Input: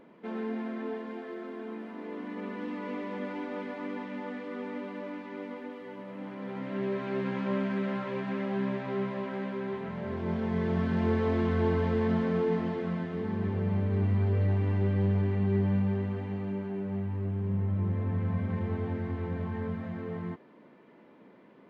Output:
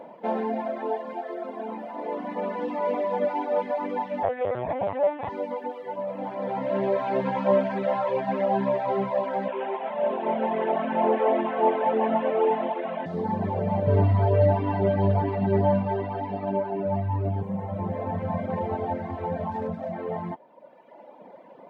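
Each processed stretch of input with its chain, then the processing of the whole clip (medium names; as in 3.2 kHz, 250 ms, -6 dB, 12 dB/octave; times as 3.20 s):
4.23–5.29 s: peaking EQ 1.8 kHz +2 dB 0.42 oct + LPC vocoder at 8 kHz pitch kept + level flattener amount 100%
9.48–13.06 s: one-bit delta coder 16 kbps, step -38 dBFS + steep high-pass 220 Hz 48 dB/octave
13.87–17.43 s: bass shelf 120 Hz +11.5 dB + comb 7 ms, depth 78% + careless resampling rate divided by 4×, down none, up filtered
19.51–19.93 s: treble shelf 2.2 kHz -6 dB + sliding maximum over 5 samples
whole clip: high-pass 100 Hz; reverb removal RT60 1.8 s; high-order bell 700 Hz +14 dB 1.1 oct; trim +5.5 dB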